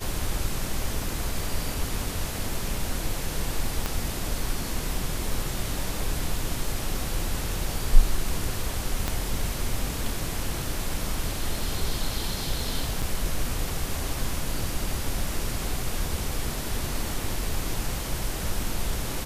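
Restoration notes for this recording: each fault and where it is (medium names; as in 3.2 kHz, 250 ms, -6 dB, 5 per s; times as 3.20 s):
3.86 s: pop -12 dBFS
9.08 s: pop -11 dBFS
13.02–13.03 s: dropout 5.4 ms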